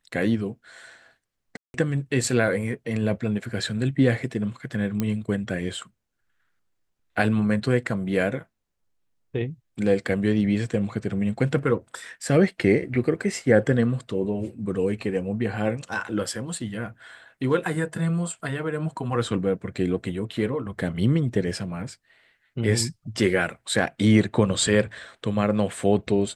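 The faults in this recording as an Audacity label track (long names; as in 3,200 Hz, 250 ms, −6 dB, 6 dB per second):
1.570000	1.740000	drop-out 171 ms
5.000000	5.000000	click −12 dBFS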